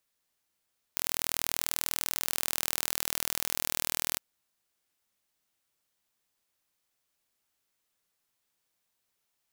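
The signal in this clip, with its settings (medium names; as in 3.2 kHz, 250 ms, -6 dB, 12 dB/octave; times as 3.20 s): pulse train 40.3 per s, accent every 0, -2.5 dBFS 3.21 s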